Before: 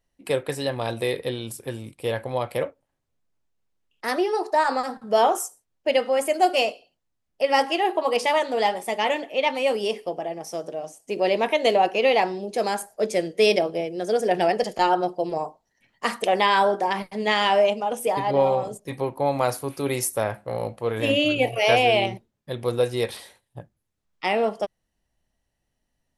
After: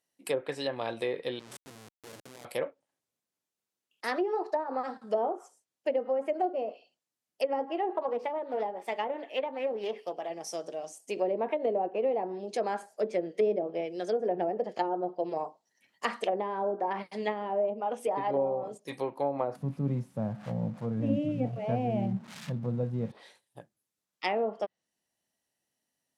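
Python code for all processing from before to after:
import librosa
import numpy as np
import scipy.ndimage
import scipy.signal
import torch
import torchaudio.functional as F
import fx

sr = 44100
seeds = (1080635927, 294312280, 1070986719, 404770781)

y = fx.chain(x, sr, fx.level_steps(step_db=20),
    fx.low_shelf(hz=190.0, db=4.5),
    fx.schmitt(flips_db=-37.5), at=(1.39, 2.45))
y = fx.chain(y, sr, fx.low_shelf(hz=190.0, db=-10.0),
    fx.resample_bad(factor=2, down='none', up='zero_stuff'),
    fx.doppler_dist(depth_ms=0.14), at=(7.95, 10.3))
y = fx.chain(y, sr, fx.crossing_spikes(level_db=-14.5),
    fx.low_shelf_res(hz=260.0, db=12.5, q=3.0), at=(19.55, 23.12))
y = fx.env_lowpass_down(y, sr, base_hz=550.0, full_db=-17.0)
y = scipy.signal.sosfilt(scipy.signal.butter(2, 200.0, 'highpass', fs=sr, output='sos'), y)
y = fx.high_shelf(y, sr, hz=4200.0, db=9.5)
y = y * librosa.db_to_amplitude(-6.0)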